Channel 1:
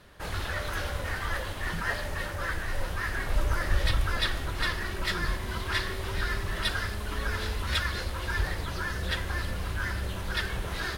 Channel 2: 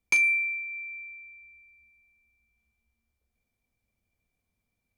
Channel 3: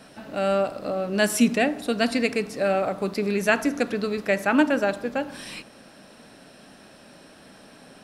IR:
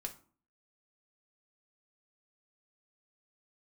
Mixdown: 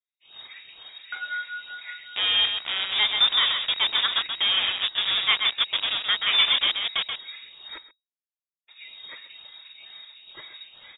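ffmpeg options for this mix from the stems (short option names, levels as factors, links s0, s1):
-filter_complex "[0:a]asplit=2[s0][s1];[s1]afreqshift=-2.2[s2];[s0][s2]amix=inputs=2:normalize=1,volume=0.237,asplit=3[s3][s4][s5];[s3]atrim=end=7.78,asetpts=PTS-STARTPTS,afade=t=out:st=7.776:d=0.004:c=hsin[s6];[s4]atrim=start=7.78:end=8.67,asetpts=PTS-STARTPTS,volume=0[s7];[s5]atrim=start=8.67,asetpts=PTS-STARTPTS,afade=t=in:d=0.004:c=hsin[s8];[s6][s7][s8]concat=n=3:v=0:a=1,asplit=3[s9][s10][s11];[s10]volume=0.708[s12];[s11]volume=0.422[s13];[1:a]tremolo=f=5.4:d=0.92,aeval=exprs='0.0501*(abs(mod(val(0)/0.0501+3,4)-2)-1)':c=same,adelay=1000,volume=0.841,asplit=2[s14][s15];[s15]volume=0.708[s16];[2:a]acrusher=bits=3:mix=0:aa=0.000001,adelay=1800,volume=0.794,asplit=2[s17][s18];[s18]volume=0.531[s19];[3:a]atrim=start_sample=2205[s20];[s12][s16]amix=inputs=2:normalize=0[s21];[s21][s20]afir=irnorm=-1:irlink=0[s22];[s13][s19]amix=inputs=2:normalize=0,aecho=0:1:131:1[s23];[s9][s14][s17][s22][s23]amix=inputs=5:normalize=0,agate=range=0.0224:threshold=0.00891:ratio=3:detection=peak,lowpass=f=3200:t=q:w=0.5098,lowpass=f=3200:t=q:w=0.6013,lowpass=f=3200:t=q:w=0.9,lowpass=f=3200:t=q:w=2.563,afreqshift=-3800"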